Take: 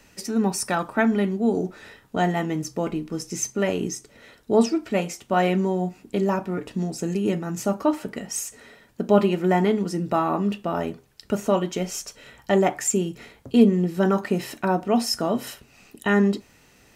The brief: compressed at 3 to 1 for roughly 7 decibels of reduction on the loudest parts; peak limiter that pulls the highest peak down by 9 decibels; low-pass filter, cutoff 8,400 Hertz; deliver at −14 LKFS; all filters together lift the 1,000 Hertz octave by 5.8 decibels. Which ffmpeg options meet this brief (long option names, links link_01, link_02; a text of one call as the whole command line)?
ffmpeg -i in.wav -af "lowpass=8400,equalizer=frequency=1000:width_type=o:gain=8,acompressor=threshold=-19dB:ratio=3,volume=13.5dB,alimiter=limit=-2.5dB:level=0:latency=1" out.wav